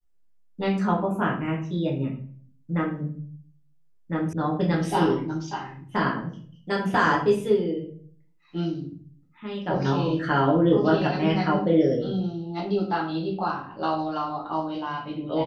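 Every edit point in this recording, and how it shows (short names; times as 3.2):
4.33 sound cut off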